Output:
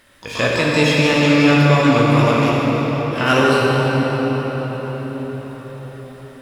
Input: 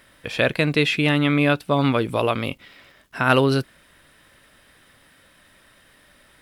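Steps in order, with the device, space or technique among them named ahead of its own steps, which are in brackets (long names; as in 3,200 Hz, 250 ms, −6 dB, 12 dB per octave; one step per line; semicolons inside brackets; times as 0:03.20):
shimmer-style reverb (pitch-shifted copies added +12 semitones −9 dB; convolution reverb RT60 6.0 s, pre-delay 11 ms, DRR −5 dB)
level −1 dB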